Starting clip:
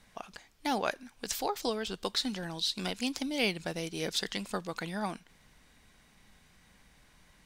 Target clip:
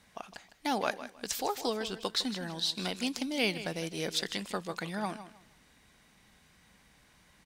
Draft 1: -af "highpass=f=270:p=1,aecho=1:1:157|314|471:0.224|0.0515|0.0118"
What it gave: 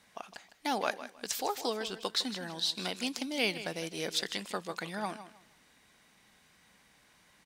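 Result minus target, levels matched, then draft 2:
125 Hz band -4.0 dB
-af "highpass=f=68:p=1,aecho=1:1:157|314|471:0.224|0.0515|0.0118"

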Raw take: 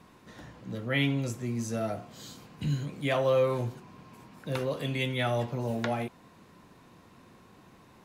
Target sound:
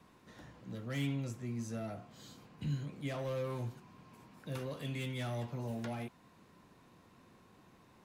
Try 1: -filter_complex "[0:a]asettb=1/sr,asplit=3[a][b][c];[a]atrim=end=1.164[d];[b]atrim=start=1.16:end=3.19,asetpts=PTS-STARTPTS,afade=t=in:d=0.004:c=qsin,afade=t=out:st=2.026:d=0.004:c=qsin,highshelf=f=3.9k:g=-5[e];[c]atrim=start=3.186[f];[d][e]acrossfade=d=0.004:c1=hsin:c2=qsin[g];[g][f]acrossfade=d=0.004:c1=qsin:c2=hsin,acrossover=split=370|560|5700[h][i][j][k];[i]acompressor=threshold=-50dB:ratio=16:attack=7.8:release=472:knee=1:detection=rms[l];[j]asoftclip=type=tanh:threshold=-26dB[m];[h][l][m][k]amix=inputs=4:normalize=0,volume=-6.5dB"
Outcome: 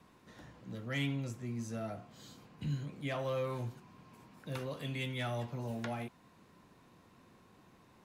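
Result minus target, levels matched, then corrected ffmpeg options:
soft clip: distortion -10 dB
-filter_complex "[0:a]asettb=1/sr,asplit=3[a][b][c];[a]atrim=end=1.164[d];[b]atrim=start=1.16:end=3.19,asetpts=PTS-STARTPTS,afade=t=in:d=0.004:c=qsin,afade=t=out:st=2.026:d=0.004:c=qsin,highshelf=f=3.9k:g=-5[e];[c]atrim=start=3.186[f];[d][e]acrossfade=d=0.004:c1=hsin:c2=qsin[g];[g][f]acrossfade=d=0.004:c1=qsin:c2=hsin,acrossover=split=370|560|5700[h][i][j][k];[i]acompressor=threshold=-50dB:ratio=16:attack=7.8:release=472:knee=1:detection=rms[l];[j]asoftclip=type=tanh:threshold=-36dB[m];[h][l][m][k]amix=inputs=4:normalize=0,volume=-6.5dB"

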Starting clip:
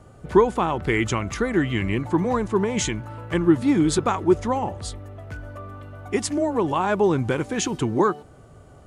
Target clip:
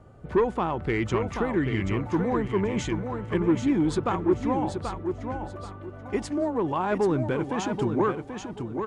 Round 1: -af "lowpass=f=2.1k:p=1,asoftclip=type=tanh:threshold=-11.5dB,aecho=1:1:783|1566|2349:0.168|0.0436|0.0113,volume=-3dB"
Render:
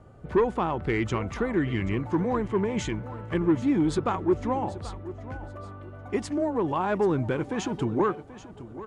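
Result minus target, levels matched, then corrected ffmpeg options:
echo-to-direct -9 dB
-af "lowpass=f=2.1k:p=1,asoftclip=type=tanh:threshold=-11.5dB,aecho=1:1:783|1566|2349:0.473|0.123|0.032,volume=-3dB"

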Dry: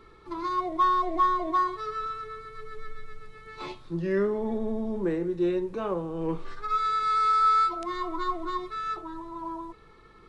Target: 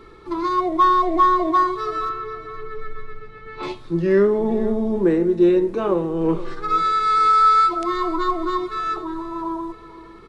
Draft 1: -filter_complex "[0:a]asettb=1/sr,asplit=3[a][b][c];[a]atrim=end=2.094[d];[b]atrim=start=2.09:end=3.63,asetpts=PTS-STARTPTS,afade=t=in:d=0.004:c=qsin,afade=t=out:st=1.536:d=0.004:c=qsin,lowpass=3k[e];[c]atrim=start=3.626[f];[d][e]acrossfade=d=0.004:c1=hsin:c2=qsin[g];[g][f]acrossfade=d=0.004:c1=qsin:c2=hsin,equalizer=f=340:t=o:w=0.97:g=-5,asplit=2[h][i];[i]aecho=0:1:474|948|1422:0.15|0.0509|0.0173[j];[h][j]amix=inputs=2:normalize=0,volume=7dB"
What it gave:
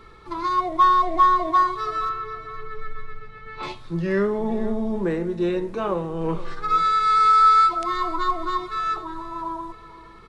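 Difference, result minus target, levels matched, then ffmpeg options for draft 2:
250 Hz band -4.5 dB
-filter_complex "[0:a]asettb=1/sr,asplit=3[a][b][c];[a]atrim=end=2.094[d];[b]atrim=start=2.09:end=3.63,asetpts=PTS-STARTPTS,afade=t=in:d=0.004:c=qsin,afade=t=out:st=1.536:d=0.004:c=qsin,lowpass=3k[e];[c]atrim=start=3.626[f];[d][e]acrossfade=d=0.004:c1=hsin:c2=qsin[g];[g][f]acrossfade=d=0.004:c1=qsin:c2=hsin,equalizer=f=340:t=o:w=0.97:g=4,asplit=2[h][i];[i]aecho=0:1:474|948|1422:0.15|0.0509|0.0173[j];[h][j]amix=inputs=2:normalize=0,volume=7dB"

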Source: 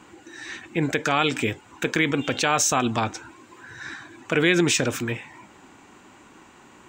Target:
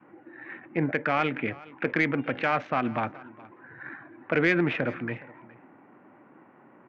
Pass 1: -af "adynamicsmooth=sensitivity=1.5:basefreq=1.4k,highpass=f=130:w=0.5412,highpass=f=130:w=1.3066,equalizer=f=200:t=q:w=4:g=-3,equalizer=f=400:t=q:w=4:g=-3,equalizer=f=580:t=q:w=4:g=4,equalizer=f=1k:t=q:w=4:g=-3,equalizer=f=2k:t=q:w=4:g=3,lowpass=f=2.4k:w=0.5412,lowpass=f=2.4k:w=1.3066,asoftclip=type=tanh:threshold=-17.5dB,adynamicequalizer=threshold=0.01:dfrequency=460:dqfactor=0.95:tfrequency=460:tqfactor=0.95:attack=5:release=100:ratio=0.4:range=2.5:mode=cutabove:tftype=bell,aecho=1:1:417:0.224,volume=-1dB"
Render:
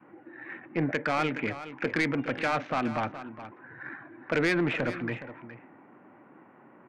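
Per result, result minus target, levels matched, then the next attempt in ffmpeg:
soft clip: distortion +13 dB; echo-to-direct +8 dB
-af "adynamicsmooth=sensitivity=1.5:basefreq=1.4k,highpass=f=130:w=0.5412,highpass=f=130:w=1.3066,equalizer=f=200:t=q:w=4:g=-3,equalizer=f=400:t=q:w=4:g=-3,equalizer=f=580:t=q:w=4:g=4,equalizer=f=1k:t=q:w=4:g=-3,equalizer=f=2k:t=q:w=4:g=3,lowpass=f=2.4k:w=0.5412,lowpass=f=2.4k:w=1.3066,asoftclip=type=tanh:threshold=-8.5dB,adynamicequalizer=threshold=0.01:dfrequency=460:dqfactor=0.95:tfrequency=460:tqfactor=0.95:attack=5:release=100:ratio=0.4:range=2.5:mode=cutabove:tftype=bell,aecho=1:1:417:0.224,volume=-1dB"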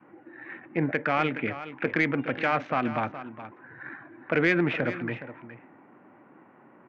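echo-to-direct +8 dB
-af "adynamicsmooth=sensitivity=1.5:basefreq=1.4k,highpass=f=130:w=0.5412,highpass=f=130:w=1.3066,equalizer=f=200:t=q:w=4:g=-3,equalizer=f=400:t=q:w=4:g=-3,equalizer=f=580:t=q:w=4:g=4,equalizer=f=1k:t=q:w=4:g=-3,equalizer=f=2k:t=q:w=4:g=3,lowpass=f=2.4k:w=0.5412,lowpass=f=2.4k:w=1.3066,asoftclip=type=tanh:threshold=-8.5dB,adynamicequalizer=threshold=0.01:dfrequency=460:dqfactor=0.95:tfrequency=460:tqfactor=0.95:attack=5:release=100:ratio=0.4:range=2.5:mode=cutabove:tftype=bell,aecho=1:1:417:0.0891,volume=-1dB"

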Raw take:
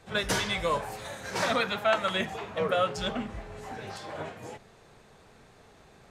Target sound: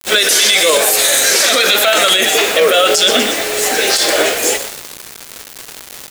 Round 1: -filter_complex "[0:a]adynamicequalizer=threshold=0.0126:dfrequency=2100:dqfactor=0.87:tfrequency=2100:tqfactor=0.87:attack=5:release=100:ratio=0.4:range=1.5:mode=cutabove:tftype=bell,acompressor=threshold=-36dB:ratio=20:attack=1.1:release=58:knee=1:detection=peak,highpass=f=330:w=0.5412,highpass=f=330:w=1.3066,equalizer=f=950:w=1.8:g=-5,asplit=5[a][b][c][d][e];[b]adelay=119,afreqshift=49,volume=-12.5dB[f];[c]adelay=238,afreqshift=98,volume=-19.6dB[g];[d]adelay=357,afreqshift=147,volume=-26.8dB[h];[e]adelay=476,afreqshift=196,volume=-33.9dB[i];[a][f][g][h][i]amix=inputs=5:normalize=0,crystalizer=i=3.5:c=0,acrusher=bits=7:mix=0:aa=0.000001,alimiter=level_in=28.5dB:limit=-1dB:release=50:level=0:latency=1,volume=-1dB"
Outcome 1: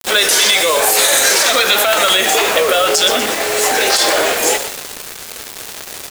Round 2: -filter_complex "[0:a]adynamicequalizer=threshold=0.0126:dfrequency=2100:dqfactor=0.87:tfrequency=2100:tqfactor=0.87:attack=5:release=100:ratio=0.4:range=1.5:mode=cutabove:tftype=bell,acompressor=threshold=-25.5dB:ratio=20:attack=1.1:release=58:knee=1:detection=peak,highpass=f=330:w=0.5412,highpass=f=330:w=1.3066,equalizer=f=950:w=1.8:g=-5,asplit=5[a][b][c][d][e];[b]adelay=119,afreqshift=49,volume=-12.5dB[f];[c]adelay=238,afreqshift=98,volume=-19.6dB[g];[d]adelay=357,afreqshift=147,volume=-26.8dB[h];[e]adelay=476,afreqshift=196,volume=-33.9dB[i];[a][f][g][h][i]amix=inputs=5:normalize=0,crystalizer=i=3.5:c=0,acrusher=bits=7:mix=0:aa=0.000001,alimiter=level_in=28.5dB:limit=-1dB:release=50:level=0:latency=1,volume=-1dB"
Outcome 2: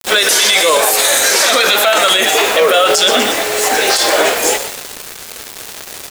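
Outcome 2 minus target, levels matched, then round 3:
1000 Hz band +3.5 dB
-filter_complex "[0:a]adynamicequalizer=threshold=0.0126:dfrequency=2100:dqfactor=0.87:tfrequency=2100:tqfactor=0.87:attack=5:release=100:ratio=0.4:range=1.5:mode=cutabove:tftype=bell,acompressor=threshold=-25.5dB:ratio=20:attack=1.1:release=58:knee=1:detection=peak,highpass=f=330:w=0.5412,highpass=f=330:w=1.3066,equalizer=f=950:w=1.8:g=-14,asplit=5[a][b][c][d][e];[b]adelay=119,afreqshift=49,volume=-12.5dB[f];[c]adelay=238,afreqshift=98,volume=-19.6dB[g];[d]adelay=357,afreqshift=147,volume=-26.8dB[h];[e]adelay=476,afreqshift=196,volume=-33.9dB[i];[a][f][g][h][i]amix=inputs=5:normalize=0,crystalizer=i=3.5:c=0,acrusher=bits=7:mix=0:aa=0.000001,alimiter=level_in=28.5dB:limit=-1dB:release=50:level=0:latency=1,volume=-1dB"

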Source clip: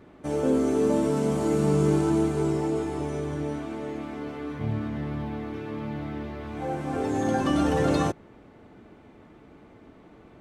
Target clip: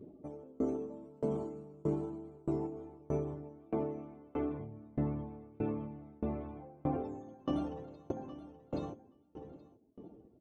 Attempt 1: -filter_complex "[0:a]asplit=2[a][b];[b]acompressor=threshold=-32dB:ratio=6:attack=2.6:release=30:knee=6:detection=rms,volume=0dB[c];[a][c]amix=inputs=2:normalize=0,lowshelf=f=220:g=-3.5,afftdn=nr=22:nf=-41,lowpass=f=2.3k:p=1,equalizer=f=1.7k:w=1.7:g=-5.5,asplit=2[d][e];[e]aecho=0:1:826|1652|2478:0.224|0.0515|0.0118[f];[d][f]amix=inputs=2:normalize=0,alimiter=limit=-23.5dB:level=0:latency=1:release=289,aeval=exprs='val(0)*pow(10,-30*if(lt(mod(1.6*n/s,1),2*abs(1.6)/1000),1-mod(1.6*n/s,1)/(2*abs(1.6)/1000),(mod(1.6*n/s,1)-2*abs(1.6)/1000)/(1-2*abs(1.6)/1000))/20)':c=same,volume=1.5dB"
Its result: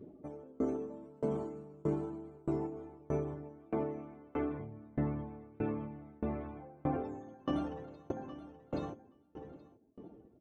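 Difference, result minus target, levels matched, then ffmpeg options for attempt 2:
2000 Hz band +6.0 dB
-filter_complex "[0:a]asplit=2[a][b];[b]acompressor=threshold=-32dB:ratio=6:attack=2.6:release=30:knee=6:detection=rms,volume=0dB[c];[a][c]amix=inputs=2:normalize=0,lowshelf=f=220:g=-3.5,afftdn=nr=22:nf=-41,lowpass=f=2.3k:p=1,equalizer=f=1.7k:w=1.7:g=-14,asplit=2[d][e];[e]aecho=0:1:826|1652|2478:0.224|0.0515|0.0118[f];[d][f]amix=inputs=2:normalize=0,alimiter=limit=-23.5dB:level=0:latency=1:release=289,aeval=exprs='val(0)*pow(10,-30*if(lt(mod(1.6*n/s,1),2*abs(1.6)/1000),1-mod(1.6*n/s,1)/(2*abs(1.6)/1000),(mod(1.6*n/s,1)-2*abs(1.6)/1000)/(1-2*abs(1.6)/1000))/20)':c=same,volume=1.5dB"

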